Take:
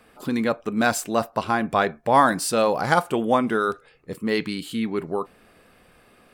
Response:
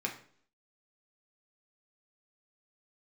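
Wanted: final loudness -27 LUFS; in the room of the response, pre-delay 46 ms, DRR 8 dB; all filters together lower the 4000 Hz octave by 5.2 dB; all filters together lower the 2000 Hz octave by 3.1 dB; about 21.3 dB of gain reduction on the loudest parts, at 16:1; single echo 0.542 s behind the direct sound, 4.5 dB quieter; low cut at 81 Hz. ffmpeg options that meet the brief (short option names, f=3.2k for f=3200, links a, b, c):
-filter_complex "[0:a]highpass=81,equalizer=f=2k:t=o:g=-3.5,equalizer=f=4k:t=o:g=-5.5,acompressor=threshold=-34dB:ratio=16,aecho=1:1:542:0.596,asplit=2[a][b];[1:a]atrim=start_sample=2205,adelay=46[c];[b][c]afir=irnorm=-1:irlink=0,volume=-12dB[d];[a][d]amix=inputs=2:normalize=0,volume=10.5dB"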